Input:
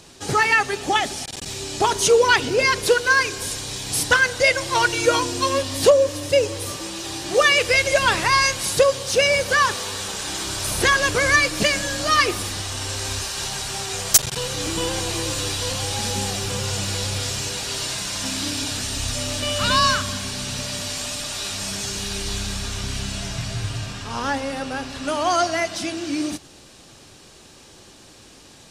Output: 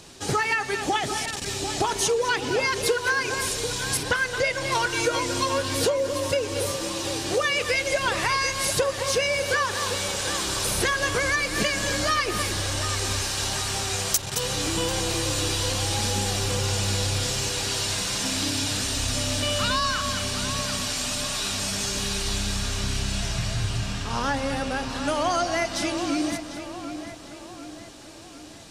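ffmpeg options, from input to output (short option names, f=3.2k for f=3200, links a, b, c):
-filter_complex "[0:a]asplit=2[a][b];[b]aecho=0:1:217:0.2[c];[a][c]amix=inputs=2:normalize=0,acompressor=threshold=-21dB:ratio=6,asplit=2[d][e];[e]adelay=744,lowpass=f=3.2k:p=1,volume=-9.5dB,asplit=2[f][g];[g]adelay=744,lowpass=f=3.2k:p=1,volume=0.51,asplit=2[h][i];[i]adelay=744,lowpass=f=3.2k:p=1,volume=0.51,asplit=2[j][k];[k]adelay=744,lowpass=f=3.2k:p=1,volume=0.51,asplit=2[l][m];[m]adelay=744,lowpass=f=3.2k:p=1,volume=0.51,asplit=2[n][o];[o]adelay=744,lowpass=f=3.2k:p=1,volume=0.51[p];[f][h][j][l][n][p]amix=inputs=6:normalize=0[q];[d][q]amix=inputs=2:normalize=0,asettb=1/sr,asplit=3[r][s][t];[r]atrim=end=3.974[u];[s]atrim=start=3.97:end=4.72,asetpts=PTS-STARTPTS,afade=t=in:d=0.004:c=qsin,afade=t=out:st=0.746:d=0.004:c=qsin,acrossover=split=4600[v][w];[w]acompressor=threshold=-37dB:ratio=4:attack=1:release=60[x];[v][x]amix=inputs=2:normalize=0[y];[t]atrim=start=4.716[z];[u][y]acrossfade=d=0.004:c1=hsin:c2=qsin[aa];[aa][z]acrossfade=d=0.004:c1=qsin:c2=hsin"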